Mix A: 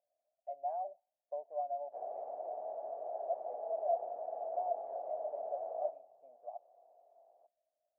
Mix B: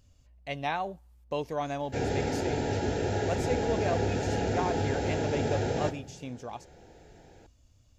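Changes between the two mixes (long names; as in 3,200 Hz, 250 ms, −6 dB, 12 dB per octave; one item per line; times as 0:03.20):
background: add Butterworth band-reject 1,100 Hz, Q 2.5
master: remove flat-topped band-pass 660 Hz, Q 5.3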